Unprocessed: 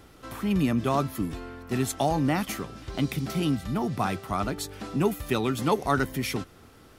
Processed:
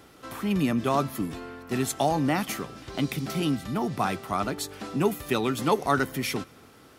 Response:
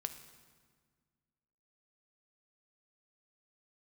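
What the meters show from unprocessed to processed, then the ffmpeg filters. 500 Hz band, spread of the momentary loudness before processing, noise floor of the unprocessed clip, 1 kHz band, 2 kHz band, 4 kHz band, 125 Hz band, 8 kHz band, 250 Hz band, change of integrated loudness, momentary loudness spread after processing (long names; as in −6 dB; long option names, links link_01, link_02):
+1.0 dB, 9 LU, −53 dBFS, +1.5 dB, +1.5 dB, +1.5 dB, −2.0 dB, +1.5 dB, −0.5 dB, 0.0 dB, 9 LU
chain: -filter_complex "[0:a]highpass=frequency=170:poles=1,asplit=2[link_01][link_02];[1:a]atrim=start_sample=2205[link_03];[link_02][link_03]afir=irnorm=-1:irlink=0,volume=-13dB[link_04];[link_01][link_04]amix=inputs=2:normalize=0"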